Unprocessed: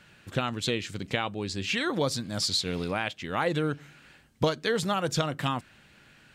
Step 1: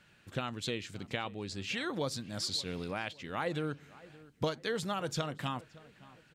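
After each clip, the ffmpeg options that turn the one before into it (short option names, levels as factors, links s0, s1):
-filter_complex "[0:a]asplit=2[s0][s1];[s1]adelay=570,lowpass=f=2400:p=1,volume=0.1,asplit=2[s2][s3];[s3]adelay=570,lowpass=f=2400:p=1,volume=0.42,asplit=2[s4][s5];[s5]adelay=570,lowpass=f=2400:p=1,volume=0.42[s6];[s0][s2][s4][s6]amix=inputs=4:normalize=0,volume=0.422"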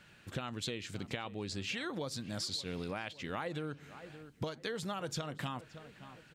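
-af "acompressor=threshold=0.0112:ratio=6,volume=1.5"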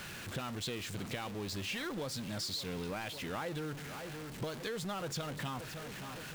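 -af "aeval=exprs='val(0)+0.5*0.0141*sgn(val(0))':c=same,volume=0.668"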